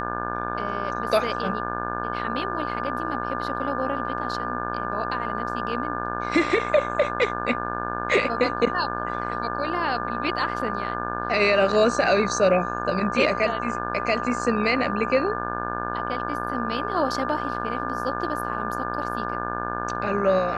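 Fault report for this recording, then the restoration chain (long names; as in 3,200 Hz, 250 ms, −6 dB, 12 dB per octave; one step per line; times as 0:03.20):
mains buzz 60 Hz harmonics 29 −31 dBFS
whistle 1,200 Hz −31 dBFS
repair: notch filter 1,200 Hz, Q 30
hum removal 60 Hz, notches 29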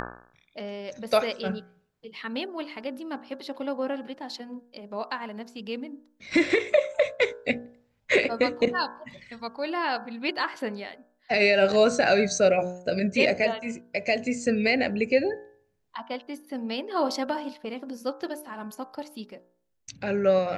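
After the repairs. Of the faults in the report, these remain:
none of them is left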